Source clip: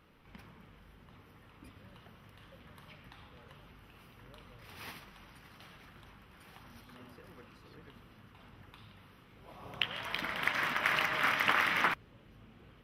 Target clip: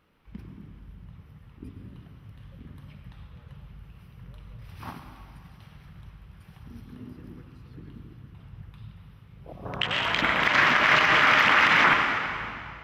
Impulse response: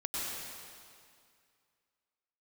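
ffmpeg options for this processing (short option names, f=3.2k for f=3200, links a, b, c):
-filter_complex "[0:a]afwtdn=0.00631,asplit=2[a][b];[1:a]atrim=start_sample=2205[c];[b][c]afir=irnorm=-1:irlink=0,volume=-9dB[d];[a][d]amix=inputs=2:normalize=0,alimiter=level_in=19.5dB:limit=-1dB:release=50:level=0:latency=1,volume=-8dB"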